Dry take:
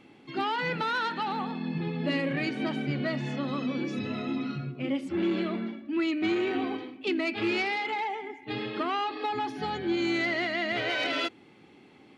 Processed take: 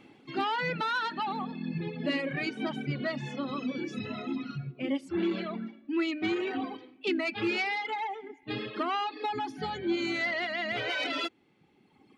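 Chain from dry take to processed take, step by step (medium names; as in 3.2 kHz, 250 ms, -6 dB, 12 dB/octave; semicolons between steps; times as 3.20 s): reverb removal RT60 1.9 s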